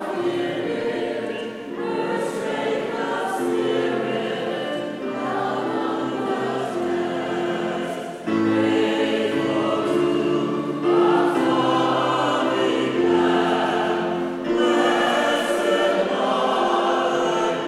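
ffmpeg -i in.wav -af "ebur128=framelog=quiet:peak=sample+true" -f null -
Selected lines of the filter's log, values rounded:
Integrated loudness:
  I:         -21.8 LUFS
  Threshold: -31.8 LUFS
Loudness range:
  LRA:         5.0 LU
  Threshold: -41.7 LUFS
  LRA low:   -24.8 LUFS
  LRA high:  -19.8 LUFS
Sample peak:
  Peak:       -6.8 dBFS
True peak:
  Peak:       -6.8 dBFS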